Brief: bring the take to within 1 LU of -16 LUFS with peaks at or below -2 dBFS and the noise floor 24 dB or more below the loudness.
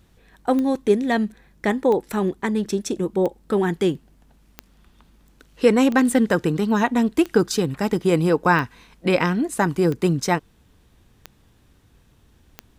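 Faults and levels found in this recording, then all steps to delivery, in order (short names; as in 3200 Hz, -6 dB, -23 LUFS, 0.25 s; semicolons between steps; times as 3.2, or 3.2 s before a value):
clicks 10; loudness -21.0 LUFS; peak -3.0 dBFS; loudness target -16.0 LUFS
-> de-click; gain +5 dB; limiter -2 dBFS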